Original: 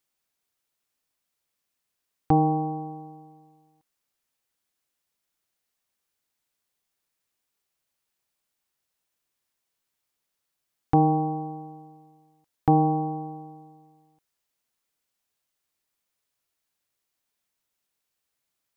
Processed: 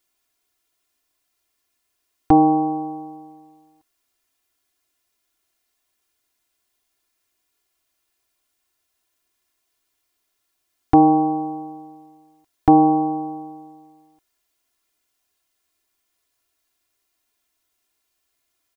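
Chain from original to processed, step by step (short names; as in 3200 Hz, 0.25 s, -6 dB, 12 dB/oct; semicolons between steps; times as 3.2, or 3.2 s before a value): comb 2.9 ms, depth 84%; gain +5 dB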